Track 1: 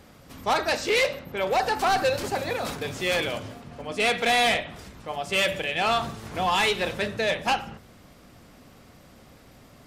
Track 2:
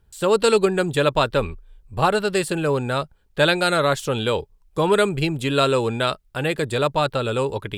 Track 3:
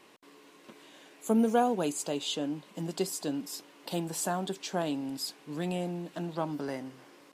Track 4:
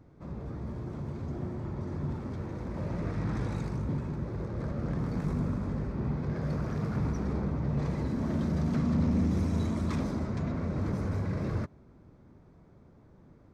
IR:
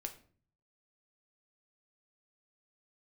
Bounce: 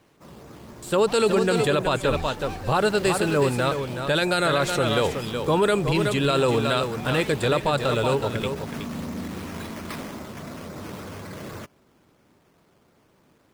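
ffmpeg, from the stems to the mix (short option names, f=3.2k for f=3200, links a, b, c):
-filter_complex "[0:a]asoftclip=type=tanh:threshold=-25.5dB,adelay=600,volume=-10.5dB[a];[1:a]adelay=700,volume=0dB,asplit=2[b][c];[c]volume=-8dB[d];[2:a]volume=-8.5dB[e];[3:a]aemphasis=mode=production:type=riaa,acrusher=samples=9:mix=1:aa=0.000001:lfo=1:lforange=5.4:lforate=3.7,volume=2.5dB[f];[d]aecho=0:1:371:1[g];[a][b][e][f][g]amix=inputs=5:normalize=0,alimiter=limit=-12dB:level=0:latency=1:release=20"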